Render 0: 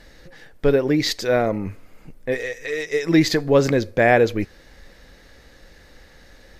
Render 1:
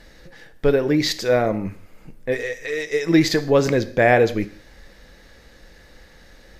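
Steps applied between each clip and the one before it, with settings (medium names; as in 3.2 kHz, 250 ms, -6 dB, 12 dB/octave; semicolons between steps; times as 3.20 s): gated-style reverb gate 200 ms falling, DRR 12 dB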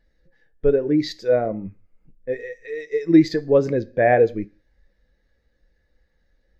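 spectral contrast expander 1.5:1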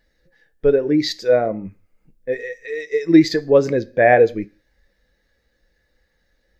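tilt EQ +1.5 dB/octave; trim +4.5 dB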